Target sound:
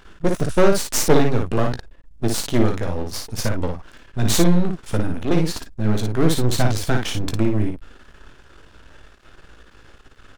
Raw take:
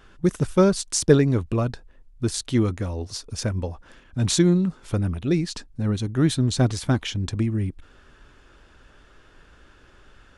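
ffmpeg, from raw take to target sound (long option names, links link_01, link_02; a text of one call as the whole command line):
ffmpeg -i in.wav -filter_complex "[0:a]aeval=exprs='max(val(0),0)':channel_layout=same,asplit=2[link_01][link_02];[link_02]aecho=0:1:18|56:0.335|0.596[link_03];[link_01][link_03]amix=inputs=2:normalize=0,asoftclip=type=tanh:threshold=-7dB,volume=6.5dB" out.wav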